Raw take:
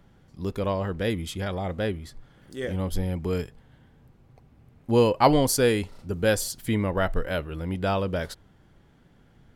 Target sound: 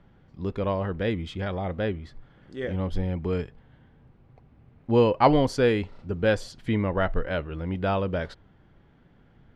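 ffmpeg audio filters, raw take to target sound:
-af "lowpass=3.2k"

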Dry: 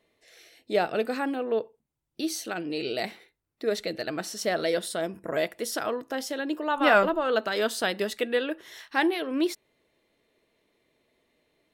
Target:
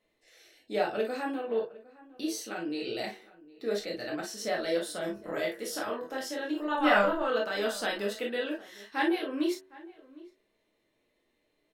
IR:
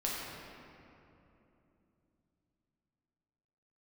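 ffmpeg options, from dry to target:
-filter_complex "[0:a]bandreject=f=94.03:t=h:w=4,bandreject=f=188.06:t=h:w=4,bandreject=f=282.09:t=h:w=4,bandreject=f=376.12:t=h:w=4,bandreject=f=470.15:t=h:w=4,bandreject=f=564.18:t=h:w=4,bandreject=f=658.21:t=h:w=4,bandreject=f=752.24:t=h:w=4,bandreject=f=846.27:t=h:w=4,bandreject=f=940.3:t=h:w=4,bandreject=f=1.03433k:t=h:w=4,bandreject=f=1.12836k:t=h:w=4,bandreject=f=1.22239k:t=h:w=4,bandreject=f=1.31642k:t=h:w=4,bandreject=f=1.41045k:t=h:w=4,bandreject=f=1.50448k:t=h:w=4,bandreject=f=1.59851k:t=h:w=4,bandreject=f=1.69254k:t=h:w=4,asettb=1/sr,asplit=3[a][b][c];[a]atrim=end=4.974[d];[b]atrim=start=4.97:end=7.38,asetpts=PTS-STARTPTS,afade=t=in:d=0.004:c=qsin,afade=t=out:st=2.406:d=0.004:c=qsin,asplit=2[e][f];[f]adelay=24,volume=-6dB[g];[e][g]amix=inputs=2:normalize=0,atrim=end_sample=106281[h];[c]atrim=start=7.376[i];[d][h]acrossfade=d=0.004:c1=hsin:c2=qsin[j];[j][i]acrossfade=d=0.004:c1=qsin:c2=hsin,asplit=2[k][l];[l]adelay=758,volume=-20dB,highshelf=f=4k:g=-17.1[m];[k][m]amix=inputs=2:normalize=0[n];[1:a]atrim=start_sample=2205,afade=t=out:st=0.14:d=0.01,atrim=end_sample=6615,asetrate=66150,aresample=44100[o];[n][o]afir=irnorm=-1:irlink=0,volume=-3dB"

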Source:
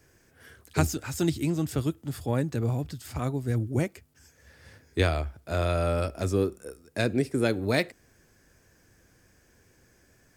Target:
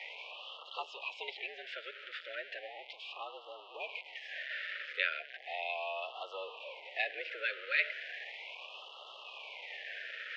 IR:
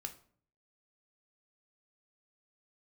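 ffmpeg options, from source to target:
-filter_complex "[0:a]aeval=exprs='val(0)+0.5*0.0335*sgn(val(0))':c=same,aderivative,highpass=f=430:t=q:w=0.5412,highpass=f=430:t=q:w=1.307,lowpass=f=2.9k:t=q:w=0.5176,lowpass=f=2.9k:t=q:w=0.7071,lowpass=f=2.9k:t=q:w=1.932,afreqshift=84,asettb=1/sr,asplit=3[a][b][c];[a]atrim=end=1.324[d];[b]atrim=start=1.32:end=3.18,asetpts=PTS-STARTPTS,afade=t=in:d=0.004:c=qsin,afade=t=out:st=1.856:d=0.004:c=qsin,bandreject=f=930:w=7.4[e];[c]atrim=start=3.176[f];[d][e]acrossfade=d=0.004:c1=hsin:c2=qsin[g];[g][f]acrossfade=d=0.004:c1=qsin:c2=hsin,acrossover=split=700|1500[h][i][j];[h]alimiter=level_in=27dB:limit=-24dB:level=0:latency=1:release=16,volume=-27dB[k];[k][i][j]amix=inputs=3:normalize=0,afftfilt=real='re*(1-between(b*sr/1024,870*pow(1900/870,0.5+0.5*sin(2*PI*0.36*pts/sr))/1.41,870*pow(1900/870,0.5+0.5*sin(2*PI*0.36*pts/sr))*1.41))':imag='im*(1-between(b*sr/1024,870*pow(1900/870,0.5+0.5*sin(2*PI*0.36*pts/sr))/1.41,870*pow(1900/870,0.5+0.5*sin(2*PI*0.36*pts/sr))*1.41))':win_size=1024:overlap=0.75,volume=10.5dB"

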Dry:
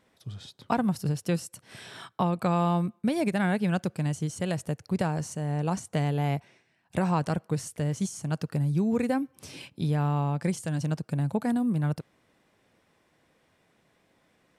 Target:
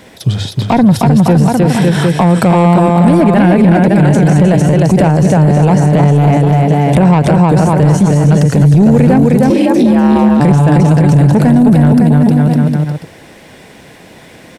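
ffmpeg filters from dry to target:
-filter_complex "[0:a]acrossover=split=530|1800[a][b][c];[c]acompressor=threshold=-53dB:ratio=6[d];[a][b][d]amix=inputs=3:normalize=0,aecho=1:1:310|558|756.4|915.1|1042:0.631|0.398|0.251|0.158|0.1,asoftclip=type=tanh:threshold=-21dB,equalizer=f=1.2k:w=3.7:g=-8,bandreject=f=50:t=h:w=6,bandreject=f=100:t=h:w=6,asettb=1/sr,asplit=3[e][f][g];[e]atrim=end=2.214[h];[f]atrim=start=2.21:end=3.17,asetpts=PTS-STARTPTS,afade=t=in:d=0.004:c=qsin,afade=t=out:st=0.956:d=0.004:c=qsin,equalizer=f=8.2k:w=2.1:g=8[i];[g]atrim=start=3.166[j];[h][i]acrossfade=d=0.004:c1=hsin:c2=qsin[k];[k][j]acrossfade=d=0.004:c1=qsin:c2=hsin,asettb=1/sr,asplit=3[l][m][n];[l]atrim=end=9.504[o];[m]atrim=start=9.5:end=10.4,asetpts=PTS-STARTPTS,afade=t=in:d=0.004:c=qsin,afade=t=out:st=0.896:d=0.004:c=qsin,afreqshift=67[p];[n]atrim=start=10.396[q];[o][p]acrossfade=d=0.004:c1=hsin:c2=qsin[r];[r][q]acrossfade=d=0.004:c1=qsin:c2=hsin,alimiter=level_in=29.5dB:limit=-1dB:release=50:level=0:latency=1,volume=-1dB"

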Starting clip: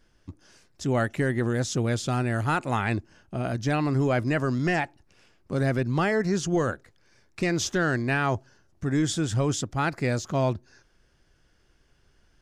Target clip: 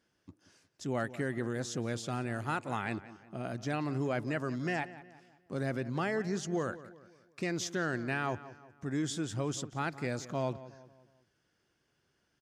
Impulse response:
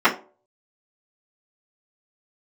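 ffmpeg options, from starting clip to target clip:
-filter_complex "[0:a]highpass=130,asplit=2[a][b];[b]adelay=180,lowpass=f=3.1k:p=1,volume=-15.5dB,asplit=2[c][d];[d]adelay=180,lowpass=f=3.1k:p=1,volume=0.45,asplit=2[e][f];[f]adelay=180,lowpass=f=3.1k:p=1,volume=0.45,asplit=2[g][h];[h]adelay=180,lowpass=f=3.1k:p=1,volume=0.45[i];[a][c][e][g][i]amix=inputs=5:normalize=0,volume=-8.5dB"

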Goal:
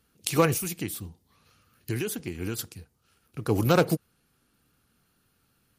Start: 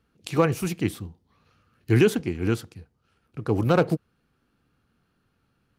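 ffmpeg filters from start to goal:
-filter_complex "[0:a]aemphasis=mode=production:type=75fm,asettb=1/sr,asplit=3[a][b][c];[a]atrim=end=0.564[d];[b]atrim=start=0.56:end=2.59,asetpts=PTS-STARTPTS,afade=t=in:d=0.004:c=qsin,afade=t=out:st=2.026:d=0.004:c=qsin,acompressor=threshold=-29dB:ratio=4[e];[c]atrim=start=2.586[f];[d][e]acrossfade=d=0.004:c1=hsin:c2=qsin[g];[g][f]acrossfade=d=0.004:c1=qsin:c2=hsin" -ar 44100 -c:a libmp3lame -b:a 56k

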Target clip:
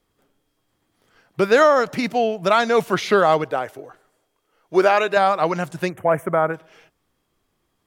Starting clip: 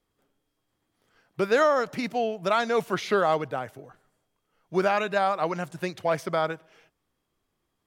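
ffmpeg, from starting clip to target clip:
-filter_complex "[0:a]asettb=1/sr,asplit=3[a][b][c];[a]atrim=end=3.444[d];[b]atrim=start=3.44:end=5.17,asetpts=PTS-STARTPTS,afade=t=in:d=0.004:c=qsin,afade=t=out:st=1.726:d=0.004:c=qsin,lowshelf=f=260:t=q:w=1.5:g=-7[e];[c]atrim=start=5.166[f];[d][e]acrossfade=d=0.004:c1=hsin:c2=qsin[g];[g][f]acrossfade=d=0.004:c1=qsin:c2=hsin,asplit=3[h][i][j];[h]afade=t=out:st=5.88:d=0.02[k];[i]asuperstop=centerf=4500:order=4:qfactor=0.59,afade=t=in:st=5.88:d=0.02,afade=t=out:st=6.53:d=0.02[l];[j]afade=t=in:st=6.53:d=0.02[m];[k][l][m]amix=inputs=3:normalize=0,volume=7dB"

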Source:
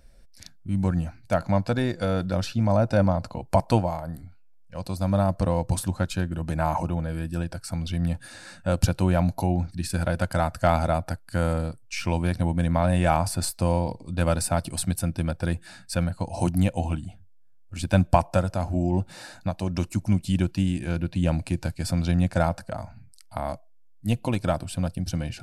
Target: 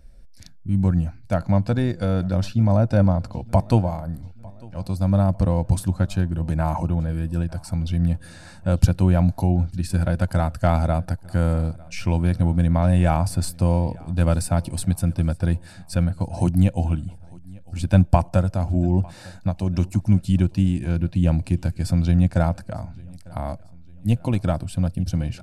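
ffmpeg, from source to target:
-filter_complex "[0:a]lowshelf=f=290:g=9.5,asplit=2[a][b];[b]aecho=0:1:900|1800|2700:0.0631|0.0303|0.0145[c];[a][c]amix=inputs=2:normalize=0,volume=-2.5dB"

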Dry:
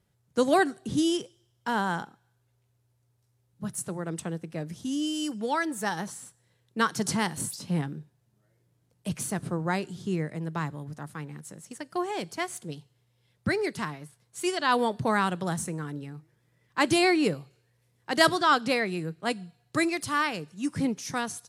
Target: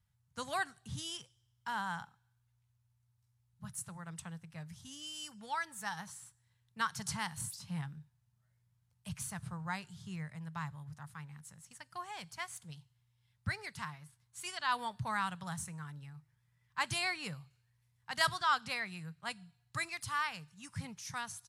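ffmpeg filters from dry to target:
-af "firequalizer=gain_entry='entry(100,0);entry(310,-28);entry(900,-6)':delay=0.05:min_phase=1,volume=-2dB"

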